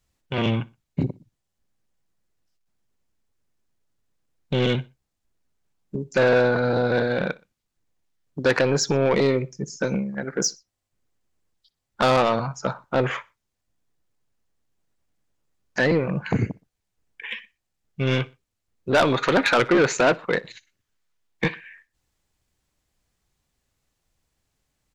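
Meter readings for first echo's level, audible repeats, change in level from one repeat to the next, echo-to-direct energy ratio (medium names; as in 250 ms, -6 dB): -23.5 dB, 2, -8.5 dB, -23.0 dB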